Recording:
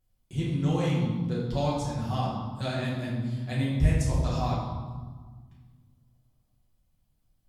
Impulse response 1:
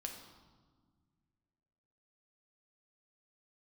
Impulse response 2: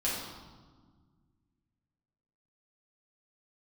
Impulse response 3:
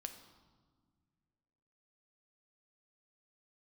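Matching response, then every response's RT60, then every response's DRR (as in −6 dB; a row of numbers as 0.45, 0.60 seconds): 2; 1.6, 1.5, 1.7 seconds; 2.0, −7.5, 6.5 decibels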